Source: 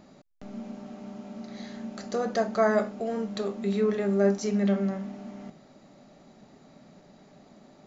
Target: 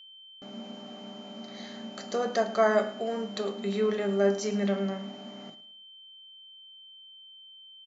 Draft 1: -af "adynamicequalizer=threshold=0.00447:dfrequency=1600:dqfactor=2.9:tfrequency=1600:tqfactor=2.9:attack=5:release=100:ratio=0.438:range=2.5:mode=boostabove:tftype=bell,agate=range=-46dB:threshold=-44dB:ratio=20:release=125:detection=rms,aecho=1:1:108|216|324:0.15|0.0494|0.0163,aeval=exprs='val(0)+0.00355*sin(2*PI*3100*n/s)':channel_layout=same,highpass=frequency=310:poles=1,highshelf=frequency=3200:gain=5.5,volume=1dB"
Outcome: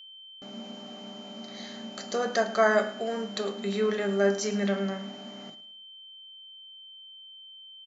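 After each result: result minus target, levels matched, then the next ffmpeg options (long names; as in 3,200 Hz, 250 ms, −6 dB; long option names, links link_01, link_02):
2,000 Hz band +4.5 dB; 8,000 Hz band +4.0 dB
-af "agate=range=-46dB:threshold=-44dB:ratio=20:release=125:detection=rms,aecho=1:1:108|216|324:0.15|0.0494|0.0163,aeval=exprs='val(0)+0.00355*sin(2*PI*3100*n/s)':channel_layout=same,highpass=frequency=310:poles=1,highshelf=frequency=3200:gain=5.5,volume=1dB"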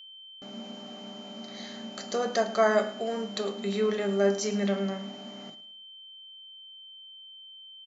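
8,000 Hz band +4.5 dB
-af "agate=range=-46dB:threshold=-44dB:ratio=20:release=125:detection=rms,aecho=1:1:108|216|324:0.15|0.0494|0.0163,aeval=exprs='val(0)+0.00355*sin(2*PI*3100*n/s)':channel_layout=same,highpass=frequency=310:poles=1,volume=1dB"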